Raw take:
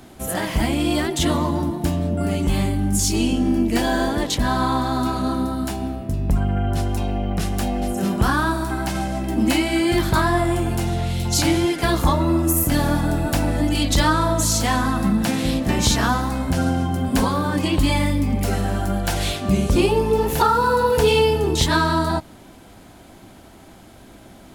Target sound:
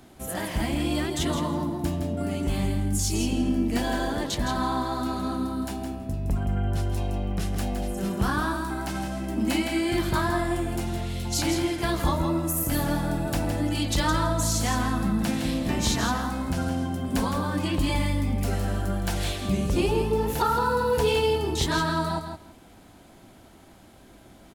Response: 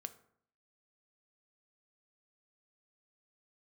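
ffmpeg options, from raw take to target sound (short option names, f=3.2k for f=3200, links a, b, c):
-af "aecho=1:1:164|328:0.422|0.0633,volume=-7dB"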